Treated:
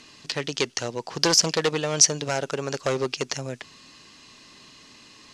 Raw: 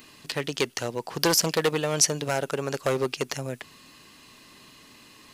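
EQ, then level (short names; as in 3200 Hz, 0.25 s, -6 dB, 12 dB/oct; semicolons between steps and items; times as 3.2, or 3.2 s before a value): synth low-pass 6100 Hz, resonance Q 1.8; 0.0 dB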